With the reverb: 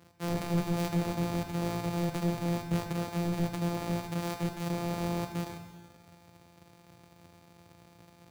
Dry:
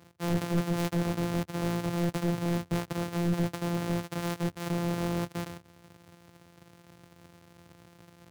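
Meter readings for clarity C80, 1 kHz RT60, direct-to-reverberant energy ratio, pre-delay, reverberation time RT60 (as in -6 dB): 8.0 dB, 1.4 s, 5.0 dB, 25 ms, 1.4 s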